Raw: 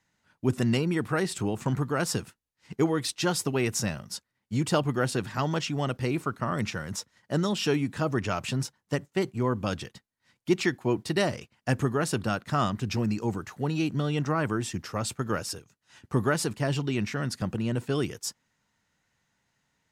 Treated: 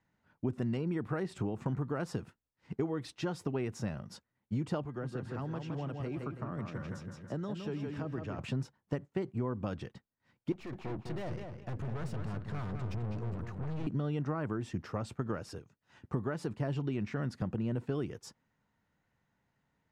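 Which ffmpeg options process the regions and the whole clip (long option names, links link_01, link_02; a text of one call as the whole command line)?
ffmpeg -i in.wav -filter_complex "[0:a]asettb=1/sr,asplit=3[link_01][link_02][link_03];[link_01]atrim=end=4.854[link_04];[link_02]atrim=start=4.85:end=8.39,asetpts=PTS-STARTPTS,afade=type=in:duration=0.004:curve=qsin,afade=type=out:start_time=3.536:duration=0.004:curve=qsin,aecho=1:1:163|326|489|652|815:0.473|0.208|0.0916|0.0403|0.0177,atrim=end_sample=156114,acrossover=split=110|380[link_05][link_06][link_07];[link_05]acompressor=threshold=-46dB:ratio=4[link_08];[link_06]acompressor=threshold=-41dB:ratio=4[link_09];[link_07]acompressor=threshold=-41dB:ratio=4[link_10];[link_08][link_09][link_10]amix=inputs=3:normalize=0,aeval=exprs='val(0)+0.000794*sin(2*PI*1600*n/s)':channel_layout=same[link_11];[link_03]atrim=start=8.386[link_12];[link_04][link_11]acrossfade=duration=0.004:curve1=hsin:curve2=qsin[link_13];[link_13][link_12]acrossfade=duration=0.004:curve1=qsin:curve2=hsin,asettb=1/sr,asplit=3[link_14][link_15][link_16];[link_14]atrim=end=10.524[link_17];[link_15]atrim=start=10.52:end=13.87,asetpts=PTS-STARTPTS,afade=type=in:duration=0.004:curve=qsin,afade=type=out:start_time=3.346:duration=0.004:curve=qsin,asubboost=boost=5:cutoff=180,aeval=exprs='(tanh(63.1*val(0)+0.45)-tanh(0.45))/63.1':channel_layout=same,asplit=2[link_18][link_19];[link_19]adelay=206,lowpass=frequency=4700:poles=1,volume=-6dB,asplit=2[link_20][link_21];[link_21]adelay=206,lowpass=frequency=4700:poles=1,volume=0.23,asplit=2[link_22][link_23];[link_23]adelay=206,lowpass=frequency=4700:poles=1,volume=0.23[link_24];[link_18][link_20][link_22][link_24]amix=inputs=4:normalize=0,atrim=end_sample=147735[link_25];[link_16]atrim=start=13.866[link_26];[link_17][link_25]acrossfade=duration=0.004:curve1=hsin:curve2=qsin[link_27];[link_27][link_26]acrossfade=duration=0.004:curve1=qsin:curve2=hsin,acompressor=threshold=-30dB:ratio=6,lowpass=frequency=1000:poles=1" out.wav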